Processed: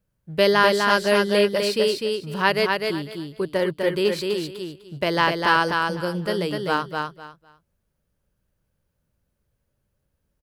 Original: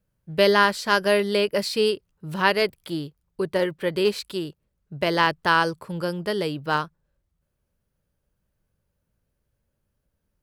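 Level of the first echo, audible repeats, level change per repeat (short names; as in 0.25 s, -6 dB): -4.0 dB, 3, -13.5 dB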